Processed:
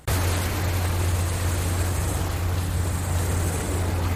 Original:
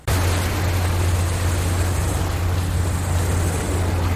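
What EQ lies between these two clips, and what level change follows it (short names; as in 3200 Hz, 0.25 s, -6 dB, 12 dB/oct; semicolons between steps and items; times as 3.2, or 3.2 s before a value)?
high shelf 10000 Hz +5.5 dB; -4.0 dB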